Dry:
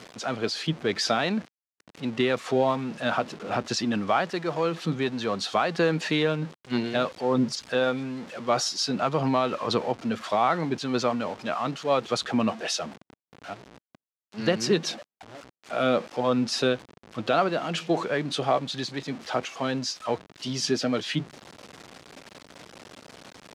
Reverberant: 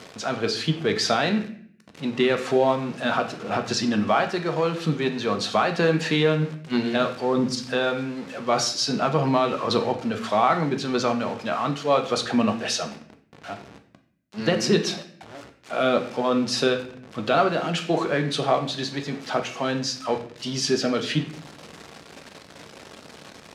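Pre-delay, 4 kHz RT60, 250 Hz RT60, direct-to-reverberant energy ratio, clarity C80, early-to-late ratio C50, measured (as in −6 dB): 4 ms, 0.50 s, 0.90 s, 5.5 dB, 14.0 dB, 11.0 dB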